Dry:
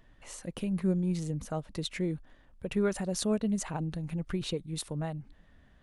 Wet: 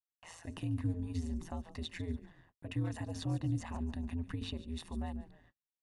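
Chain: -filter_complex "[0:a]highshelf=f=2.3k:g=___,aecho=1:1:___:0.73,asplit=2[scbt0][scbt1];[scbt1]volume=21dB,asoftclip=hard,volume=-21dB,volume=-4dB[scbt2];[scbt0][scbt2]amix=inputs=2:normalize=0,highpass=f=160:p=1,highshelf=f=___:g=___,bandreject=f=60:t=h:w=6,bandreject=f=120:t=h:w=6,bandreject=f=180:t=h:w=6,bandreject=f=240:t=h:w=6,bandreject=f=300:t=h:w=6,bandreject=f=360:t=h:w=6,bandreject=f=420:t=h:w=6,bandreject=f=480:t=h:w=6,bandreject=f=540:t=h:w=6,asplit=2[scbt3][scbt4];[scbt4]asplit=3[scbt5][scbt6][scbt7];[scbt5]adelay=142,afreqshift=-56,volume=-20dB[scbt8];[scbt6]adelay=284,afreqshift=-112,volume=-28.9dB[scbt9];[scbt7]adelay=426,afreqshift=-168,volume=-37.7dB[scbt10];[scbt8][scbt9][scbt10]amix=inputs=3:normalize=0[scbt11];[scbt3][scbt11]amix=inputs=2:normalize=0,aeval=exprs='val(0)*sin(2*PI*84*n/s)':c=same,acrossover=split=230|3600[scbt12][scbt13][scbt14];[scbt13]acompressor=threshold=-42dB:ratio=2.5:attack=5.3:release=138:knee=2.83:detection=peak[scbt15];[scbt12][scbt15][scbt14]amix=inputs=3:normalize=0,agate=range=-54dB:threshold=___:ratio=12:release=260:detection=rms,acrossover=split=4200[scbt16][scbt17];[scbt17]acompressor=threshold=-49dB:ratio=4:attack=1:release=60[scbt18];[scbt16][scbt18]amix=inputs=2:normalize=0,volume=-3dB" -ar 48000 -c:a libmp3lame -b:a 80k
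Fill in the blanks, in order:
-3.5, 1.1, 5.8k, -4.5, -52dB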